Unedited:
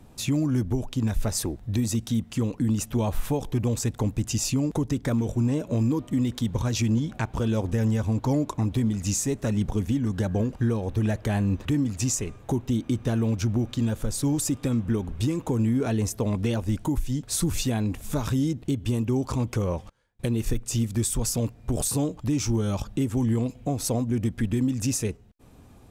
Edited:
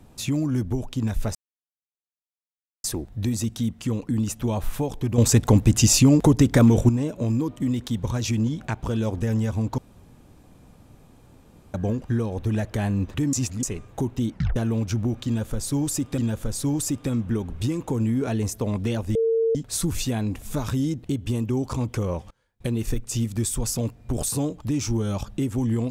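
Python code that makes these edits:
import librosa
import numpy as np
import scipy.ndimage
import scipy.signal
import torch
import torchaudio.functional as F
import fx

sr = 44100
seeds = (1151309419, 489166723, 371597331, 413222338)

y = fx.edit(x, sr, fx.insert_silence(at_s=1.35, length_s=1.49),
    fx.clip_gain(start_s=3.69, length_s=1.71, db=9.5),
    fx.room_tone_fill(start_s=8.29, length_s=1.96),
    fx.reverse_span(start_s=11.84, length_s=0.3),
    fx.tape_stop(start_s=12.82, length_s=0.25),
    fx.repeat(start_s=13.77, length_s=0.92, count=2),
    fx.bleep(start_s=16.74, length_s=0.4, hz=453.0, db=-18.0), tone=tone)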